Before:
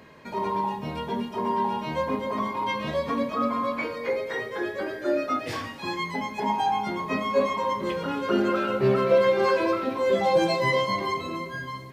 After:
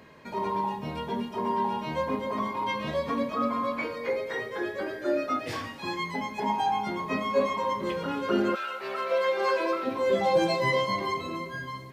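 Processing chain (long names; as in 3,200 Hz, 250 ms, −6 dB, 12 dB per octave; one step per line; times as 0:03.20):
0:08.54–0:09.84: high-pass filter 1,300 Hz → 310 Hz 12 dB per octave
level −2 dB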